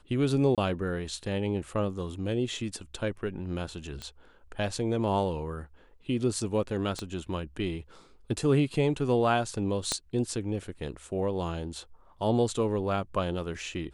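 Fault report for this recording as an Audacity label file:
0.550000	0.580000	dropout 27 ms
4.020000	4.020000	pop -24 dBFS
6.990000	6.990000	pop -21 dBFS
9.920000	9.920000	pop -13 dBFS

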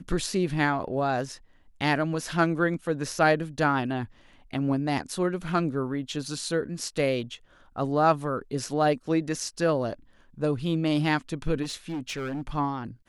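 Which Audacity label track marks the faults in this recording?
11.620000	12.420000	clipped -28.5 dBFS

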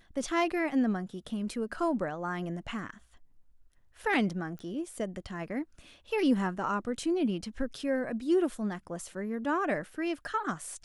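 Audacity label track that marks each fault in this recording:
4.590000	4.590000	pop -31 dBFS

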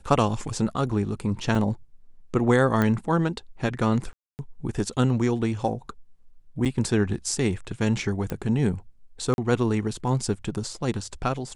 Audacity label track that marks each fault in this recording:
1.550000	1.550000	dropout 2.7 ms
2.820000	2.820000	pop -11 dBFS
4.130000	4.390000	dropout 259 ms
6.650000	6.660000	dropout 7.2 ms
8.300000	8.300000	pop -17 dBFS
9.340000	9.380000	dropout 41 ms

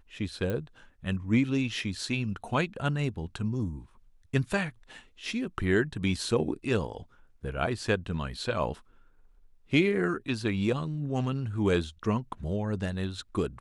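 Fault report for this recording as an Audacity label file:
0.500000	0.500000	pop -20 dBFS

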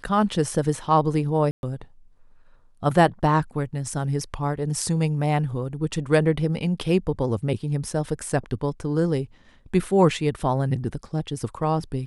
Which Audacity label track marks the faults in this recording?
1.510000	1.630000	dropout 121 ms

